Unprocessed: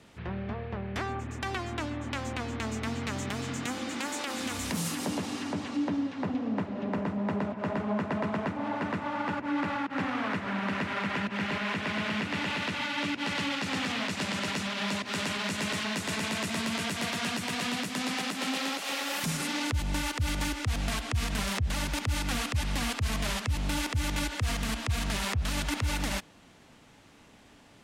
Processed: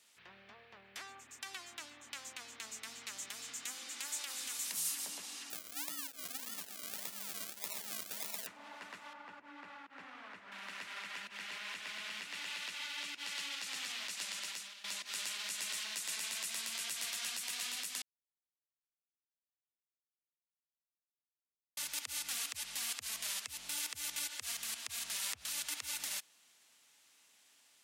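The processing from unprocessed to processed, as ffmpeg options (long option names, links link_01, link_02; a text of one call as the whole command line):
ffmpeg -i in.wav -filter_complex "[0:a]asettb=1/sr,asplit=3[link_01][link_02][link_03];[link_01]atrim=end=5.504[link_04];[link_02]atrim=start=5.5:end=8.47,asetpts=PTS-STARTPTS,afade=type=in:duration=0.004:curve=qsin,afade=type=out:start_time=2.966:duration=0.004:curve=qsin,acrusher=samples=39:mix=1:aa=0.000001:lfo=1:lforange=23.4:lforate=1.7[link_05];[link_03]atrim=start=8.466[link_06];[link_04][link_05]acrossfade=duration=0.004:curve1=hsin:curve2=qsin[link_07];[link_07][link_06]acrossfade=duration=0.004:curve1=qsin:curve2=hsin,asettb=1/sr,asplit=3[link_08][link_09][link_10];[link_08]atrim=end=9.134[link_11];[link_09]atrim=start=9.13:end=10.52,asetpts=PTS-STARTPTS,afade=type=in:duration=0.004:curve=qsin,afade=type=out:start_time=1.386:duration=0.004:curve=qsin,lowpass=frequency=1200:poles=1[link_12];[link_10]atrim=start=10.516[link_13];[link_11][link_12]acrossfade=duration=0.004:curve1=hsin:curve2=qsin[link_14];[link_14][link_13]acrossfade=duration=0.004:curve1=qsin:curve2=hsin,asplit=4[link_15][link_16][link_17][link_18];[link_15]atrim=end=14.84,asetpts=PTS-STARTPTS,afade=type=out:start_time=14.24:duration=0.6:curve=qsin:silence=0.149624[link_19];[link_16]atrim=start=14.84:end=18.02,asetpts=PTS-STARTPTS,afade=type=in:duration=0.004:curve=hsin:silence=0.149624,afade=type=out:start_time=3.176:duration=0.004:curve=hsin[link_20];[link_17]atrim=start=18.02:end=21.77,asetpts=PTS-STARTPTS,volume=0[link_21];[link_18]atrim=start=21.77,asetpts=PTS-STARTPTS,afade=type=in:duration=0.004:curve=hsin[link_22];[link_19][link_20][link_21][link_22]concat=n=4:v=0:a=1,aderivative" out.wav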